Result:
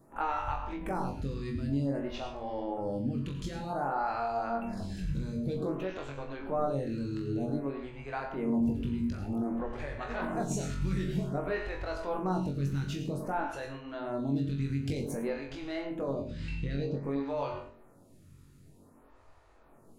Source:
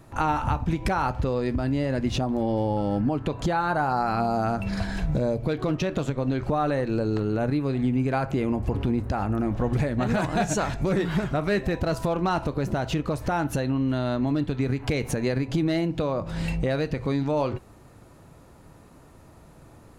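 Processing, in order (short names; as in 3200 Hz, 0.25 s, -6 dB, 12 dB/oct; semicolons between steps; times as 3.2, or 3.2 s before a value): 16.27–17.03 LPF 4600 Hz 12 dB/oct; flutter echo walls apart 3.7 m, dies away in 0.31 s; on a send at -7 dB: reverb RT60 0.35 s, pre-delay 87 ms; on the sum: photocell phaser 0.53 Hz; gain -8.5 dB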